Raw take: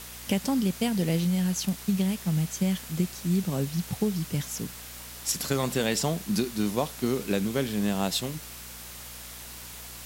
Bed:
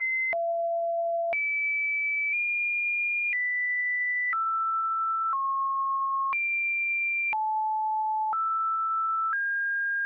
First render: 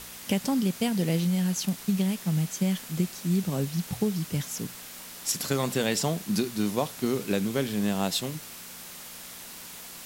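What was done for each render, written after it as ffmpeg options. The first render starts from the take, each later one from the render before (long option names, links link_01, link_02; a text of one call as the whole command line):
ffmpeg -i in.wav -af "bandreject=frequency=60:width_type=h:width=4,bandreject=frequency=120:width_type=h:width=4" out.wav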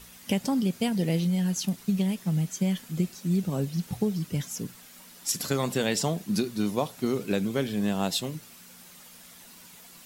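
ffmpeg -i in.wav -af "afftdn=noise_reduction=9:noise_floor=-43" out.wav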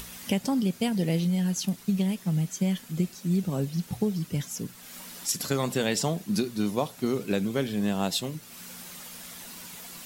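ffmpeg -i in.wav -af "acompressor=mode=upward:threshold=-34dB:ratio=2.5" out.wav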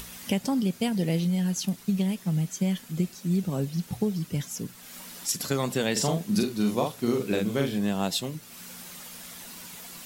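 ffmpeg -i in.wav -filter_complex "[0:a]asettb=1/sr,asplit=3[link_01][link_02][link_03];[link_01]atrim=end=5.924[link_04];[link_02]atrim=start=5.92:end=7.78,asetpts=PTS-STARTPTS,afade=type=in:duration=0.004:curve=qsin,afade=type=out:start_time=1.856:duration=0.004:curve=qsin,asplit=2[link_05][link_06];[link_06]adelay=43,volume=-3.5dB[link_07];[link_05][link_07]amix=inputs=2:normalize=0,atrim=end_sample=82026[link_08];[link_03]atrim=start=7.776[link_09];[link_04][link_08]acrossfade=duration=0.004:curve1=hsin:curve2=qsin[link_10];[link_10][link_09]acrossfade=duration=0.004:curve1=qsin:curve2=hsin" out.wav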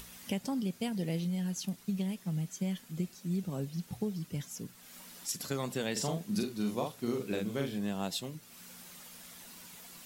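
ffmpeg -i in.wav -af "volume=-8dB" out.wav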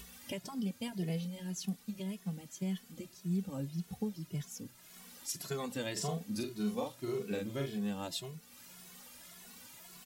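ffmpeg -i in.wav -filter_complex "[0:a]asplit=2[link_01][link_02];[link_02]adelay=2.3,afreqshift=1.8[link_03];[link_01][link_03]amix=inputs=2:normalize=1" out.wav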